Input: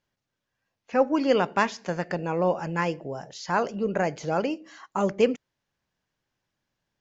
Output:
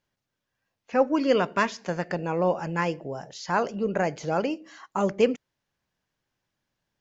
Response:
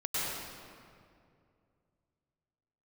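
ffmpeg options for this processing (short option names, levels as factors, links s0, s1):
-filter_complex "[0:a]asettb=1/sr,asplit=3[s0][s1][s2];[s0]atrim=end=1.064[s3];[s1]atrim=start=1.06:end=1.81,asetpts=PTS-STARTPTS,afade=t=in:d=0.004:c=qsin,afade=t=out:st=0.746:d=0.004:c=qsin,asuperstop=centerf=820:order=4:qfactor=6.5[s4];[s2]atrim=start=1.806[s5];[s3][s4]acrossfade=d=0.004:c1=hsin:c2=qsin[s6];[s6][s5]acrossfade=d=0.004:c1=qsin:c2=hsin"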